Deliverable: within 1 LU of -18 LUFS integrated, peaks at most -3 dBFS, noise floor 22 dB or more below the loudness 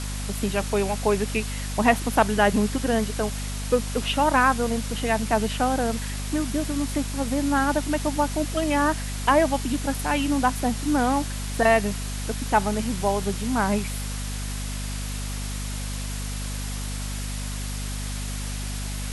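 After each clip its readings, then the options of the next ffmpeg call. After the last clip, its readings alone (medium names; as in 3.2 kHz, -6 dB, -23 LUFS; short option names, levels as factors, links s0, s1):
hum 50 Hz; highest harmonic 250 Hz; hum level -28 dBFS; noise floor -30 dBFS; noise floor target -47 dBFS; loudness -25.0 LUFS; peak level -5.5 dBFS; loudness target -18.0 LUFS
-> -af "bandreject=f=50:t=h:w=6,bandreject=f=100:t=h:w=6,bandreject=f=150:t=h:w=6,bandreject=f=200:t=h:w=6,bandreject=f=250:t=h:w=6"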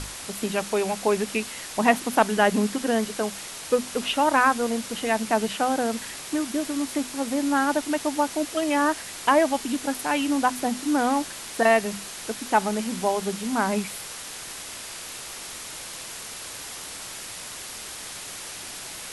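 hum not found; noise floor -38 dBFS; noise floor target -48 dBFS
-> -af "afftdn=nr=10:nf=-38"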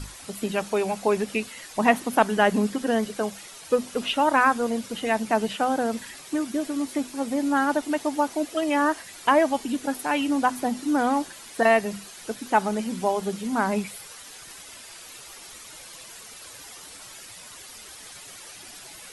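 noise floor -44 dBFS; noise floor target -47 dBFS
-> -af "afftdn=nr=6:nf=-44"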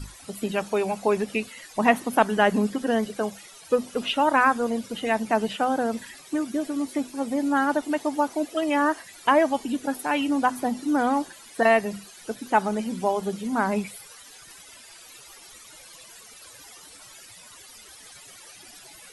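noise floor -48 dBFS; loudness -25.0 LUFS; peak level -5.5 dBFS; loudness target -18.0 LUFS
-> -af "volume=2.24,alimiter=limit=0.708:level=0:latency=1"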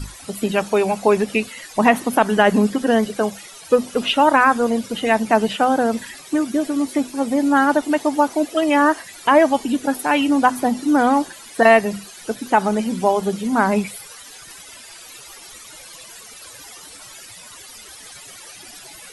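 loudness -18.5 LUFS; peak level -3.0 dBFS; noise floor -41 dBFS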